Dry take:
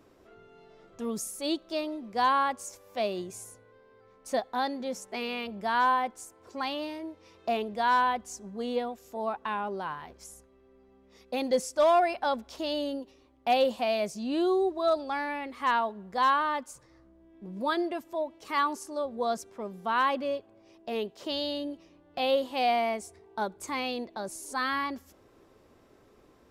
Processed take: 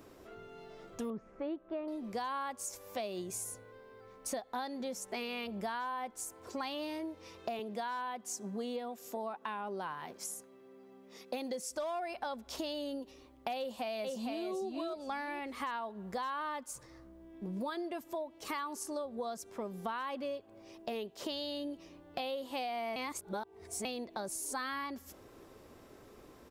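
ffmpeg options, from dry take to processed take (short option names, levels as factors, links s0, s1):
-filter_complex "[0:a]asettb=1/sr,asplit=3[s0][s1][s2];[s0]atrim=end=1.104[s3];[s1]atrim=start=1.1:end=1.88,asetpts=PTS-STARTPTS,afade=t=in:d=0.004:c=qsin,afade=t=out:st=0.776:d=0.004:c=qsin,lowpass=f=1900:w=0.5412,lowpass=f=1900:w=1.3066[s4];[s2]atrim=start=1.876[s5];[s3][s4]acrossfade=d=0.004:c1=hsin:c2=qsin[s6];[s6][s5]acrossfade=d=0.004:c1=qsin:c2=hsin,asettb=1/sr,asplit=3[s7][s8][s9];[s7]atrim=end=7.594[s10];[s8]atrim=start=7.59:end=11.71,asetpts=PTS-STARTPTS,afade=t=in:d=0.004:c=qsin,afade=t=out:st=4.116:d=0.004:c=qsin,highpass=f=140:w=0.5412,highpass=f=140:w=1.3066[s11];[s9]atrim=start=11.706[s12];[s10][s11]acrossfade=d=0.004:c1=hsin:c2=qsin[s13];[s13][s12]acrossfade=d=0.004:c1=qsin:c2=hsin,asplit=2[s14][s15];[s15]afade=t=in:st=13.58:d=0.01,afade=t=out:st=14.47:d=0.01,aecho=0:1:460|920|1380:0.749894|0.112484|0.0168726[s16];[s14][s16]amix=inputs=2:normalize=0,asplit=3[s17][s18][s19];[s17]atrim=end=22.962[s20];[s18]atrim=start=22.958:end=23.852,asetpts=PTS-STARTPTS,areverse[s21];[s19]atrim=start=23.848[s22];[s20][s21]acrossfade=d=0.004:c1=hsin:c2=hsin[s23];[s23][s22]acrossfade=d=0.004:c1=hsin:c2=hsin,highshelf=f=8500:g=7.5,alimiter=limit=0.0891:level=0:latency=1:release=178,acompressor=threshold=0.01:ratio=6,volume=1.5"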